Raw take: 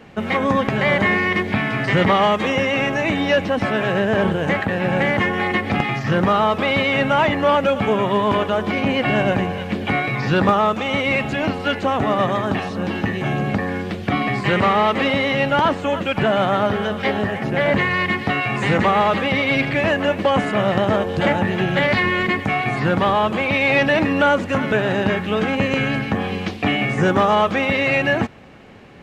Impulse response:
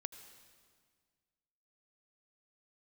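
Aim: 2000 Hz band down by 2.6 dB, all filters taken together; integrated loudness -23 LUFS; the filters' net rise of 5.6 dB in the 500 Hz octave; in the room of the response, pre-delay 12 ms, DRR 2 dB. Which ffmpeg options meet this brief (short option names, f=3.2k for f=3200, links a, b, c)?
-filter_complex "[0:a]equalizer=f=500:t=o:g=7,equalizer=f=2k:t=o:g=-3.5,asplit=2[a][b];[1:a]atrim=start_sample=2205,adelay=12[c];[b][c]afir=irnorm=-1:irlink=0,volume=1dB[d];[a][d]amix=inputs=2:normalize=0,volume=-8dB"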